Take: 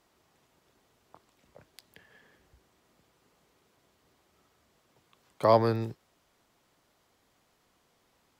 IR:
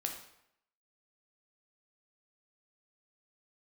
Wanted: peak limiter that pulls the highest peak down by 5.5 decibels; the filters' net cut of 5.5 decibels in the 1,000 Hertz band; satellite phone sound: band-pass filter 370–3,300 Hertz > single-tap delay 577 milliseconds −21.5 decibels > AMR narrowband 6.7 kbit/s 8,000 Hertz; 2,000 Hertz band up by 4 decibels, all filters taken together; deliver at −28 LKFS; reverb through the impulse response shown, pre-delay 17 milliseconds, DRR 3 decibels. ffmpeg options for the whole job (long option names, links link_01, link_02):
-filter_complex "[0:a]equalizer=frequency=1000:width_type=o:gain=-8.5,equalizer=frequency=2000:width_type=o:gain=8,alimiter=limit=-16.5dB:level=0:latency=1,asplit=2[link_01][link_02];[1:a]atrim=start_sample=2205,adelay=17[link_03];[link_02][link_03]afir=irnorm=-1:irlink=0,volume=-4dB[link_04];[link_01][link_04]amix=inputs=2:normalize=0,highpass=370,lowpass=3300,aecho=1:1:577:0.0841,volume=6dB" -ar 8000 -c:a libopencore_amrnb -b:a 6700